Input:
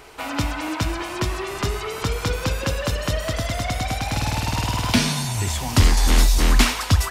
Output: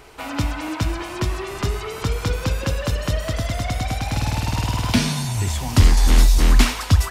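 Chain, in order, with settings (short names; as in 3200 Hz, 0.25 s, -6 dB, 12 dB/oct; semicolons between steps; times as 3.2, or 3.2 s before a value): low shelf 260 Hz +5 dB; gain -2 dB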